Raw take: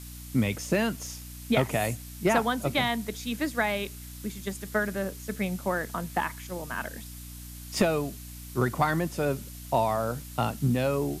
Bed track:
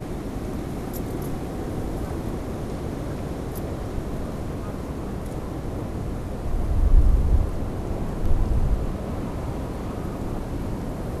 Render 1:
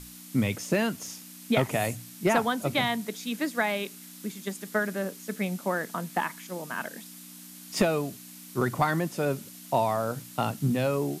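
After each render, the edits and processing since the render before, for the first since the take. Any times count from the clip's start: hum notches 60/120 Hz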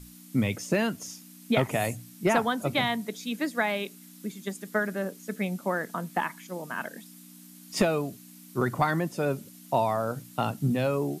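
noise reduction 7 dB, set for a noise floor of -47 dBFS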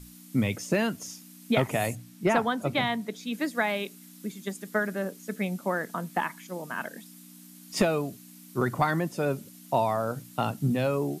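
1.95–3.33 s: treble shelf 5.5 kHz -7 dB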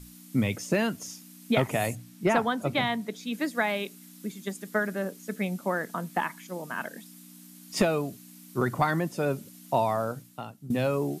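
10.03–10.70 s: fade out quadratic, to -17 dB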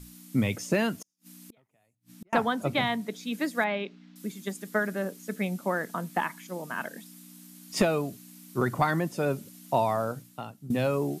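1.02–2.33 s: inverted gate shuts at -33 dBFS, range -42 dB; 3.64–4.16 s: Bessel low-pass 2.9 kHz, order 6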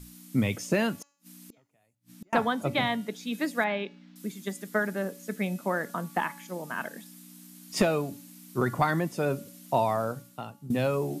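de-hum 284.2 Hz, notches 26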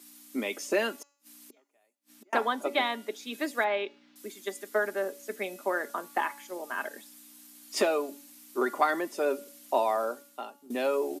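elliptic high-pass 280 Hz, stop band 60 dB; comb 5 ms, depth 40%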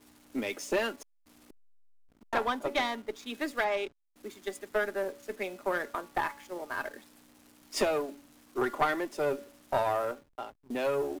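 single-diode clipper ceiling -23.5 dBFS; hysteresis with a dead band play -43.5 dBFS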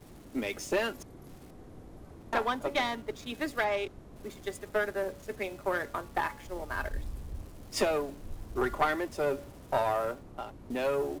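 add bed track -21 dB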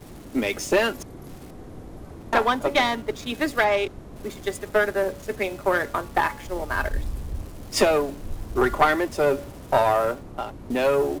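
trim +9 dB

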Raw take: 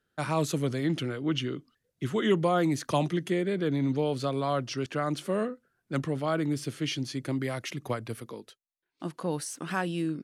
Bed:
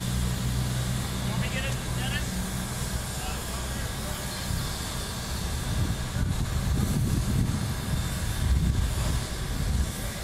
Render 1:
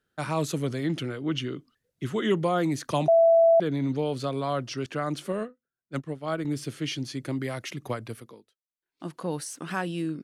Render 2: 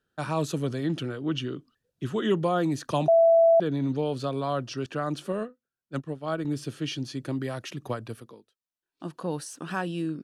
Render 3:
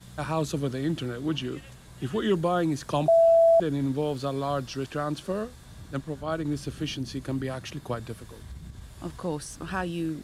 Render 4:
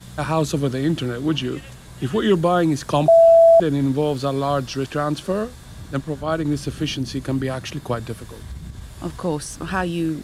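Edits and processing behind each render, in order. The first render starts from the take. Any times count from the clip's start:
3.08–3.60 s: bleep 664 Hz -14.5 dBFS; 5.32–6.45 s: upward expansion 2.5:1, over -39 dBFS; 8.05–9.12 s: dip -19 dB, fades 0.45 s
treble shelf 6.8 kHz -5.5 dB; band-stop 2.1 kHz, Q 5.4
add bed -18 dB
trim +7.5 dB

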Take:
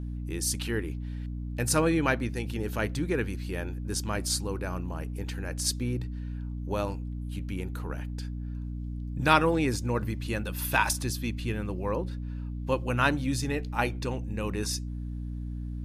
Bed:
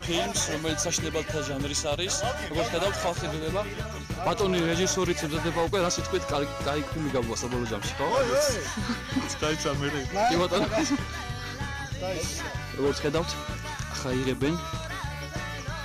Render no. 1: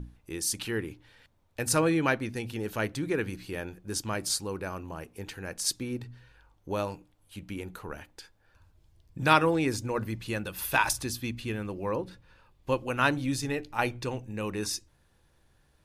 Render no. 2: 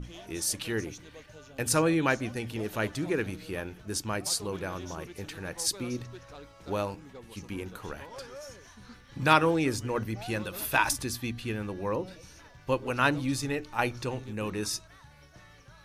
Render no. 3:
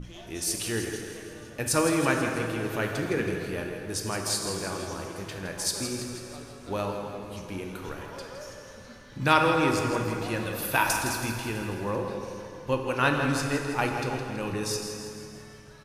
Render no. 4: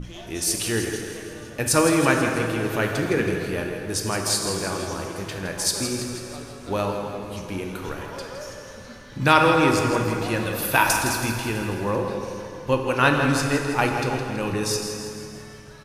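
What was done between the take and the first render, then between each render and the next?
hum notches 60/120/180/240/300 Hz
add bed -20 dB
feedback delay 163 ms, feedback 55%, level -10 dB; plate-style reverb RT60 2.6 s, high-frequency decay 0.7×, DRR 3 dB
trim +5.5 dB; peak limiter -2 dBFS, peak gain reduction 1.5 dB

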